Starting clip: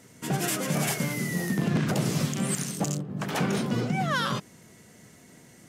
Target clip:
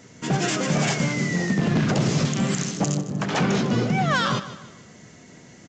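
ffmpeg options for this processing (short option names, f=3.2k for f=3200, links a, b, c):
-af "aresample=16000,volume=21dB,asoftclip=hard,volume=-21dB,aresample=44100,aecho=1:1:153|306|459|612:0.2|0.0798|0.0319|0.0128,volume=5.5dB"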